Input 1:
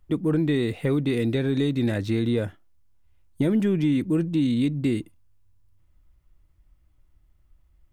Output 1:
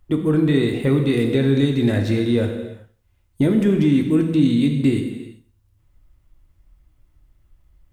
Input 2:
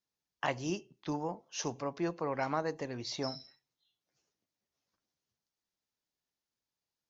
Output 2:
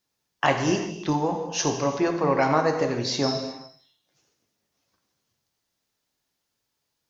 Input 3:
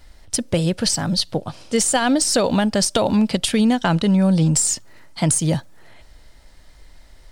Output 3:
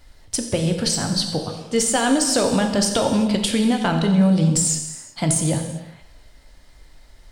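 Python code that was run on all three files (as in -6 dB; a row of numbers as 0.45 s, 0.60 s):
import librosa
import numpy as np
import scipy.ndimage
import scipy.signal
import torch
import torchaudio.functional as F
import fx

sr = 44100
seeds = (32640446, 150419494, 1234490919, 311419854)

y = fx.echo_feedback(x, sr, ms=89, feedback_pct=30, wet_db=-19)
y = fx.rev_gated(y, sr, seeds[0], gate_ms=420, shape='falling', drr_db=4.0)
y = y * 10.0 ** (-6 / 20.0) / np.max(np.abs(y))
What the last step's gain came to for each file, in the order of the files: +3.5 dB, +11.0 dB, -2.5 dB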